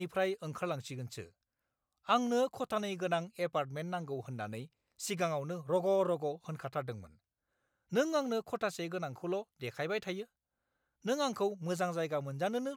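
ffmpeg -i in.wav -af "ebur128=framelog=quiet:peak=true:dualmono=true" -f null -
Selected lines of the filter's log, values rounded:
Integrated loudness:
  I:         -32.8 LUFS
  Threshold: -43.1 LUFS
Loudness range:
  LRA:         2.2 LU
  Threshold: -53.6 LUFS
  LRA low:   -34.8 LUFS
  LRA high:  -32.6 LUFS
True peak:
  Peak:      -15.4 dBFS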